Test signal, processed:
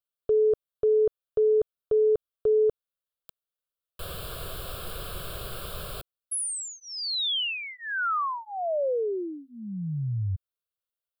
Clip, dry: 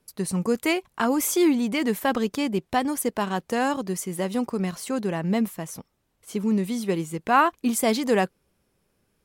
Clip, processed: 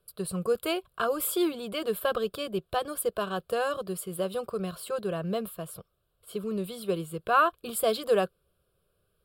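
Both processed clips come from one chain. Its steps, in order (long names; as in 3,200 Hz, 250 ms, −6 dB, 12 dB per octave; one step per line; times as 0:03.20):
parametric band 2,400 Hz −6.5 dB 0.42 octaves
phaser with its sweep stopped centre 1,300 Hz, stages 8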